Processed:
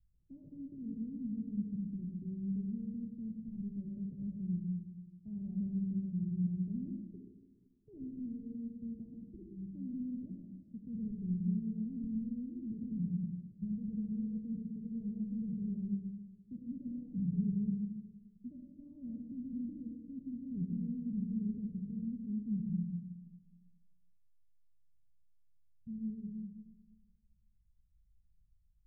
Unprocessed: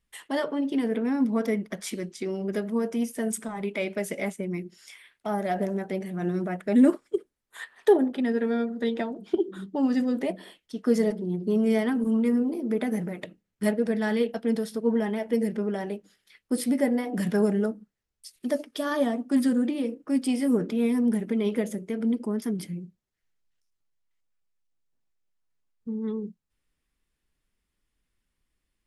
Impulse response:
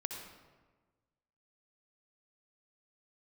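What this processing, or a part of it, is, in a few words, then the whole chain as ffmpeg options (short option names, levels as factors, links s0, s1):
club heard from the street: -filter_complex "[0:a]alimiter=limit=0.0841:level=0:latency=1:release=12,lowpass=f=130:w=0.5412,lowpass=f=130:w=1.3066[s0];[1:a]atrim=start_sample=2205[s1];[s0][s1]afir=irnorm=-1:irlink=0,volume=2.99"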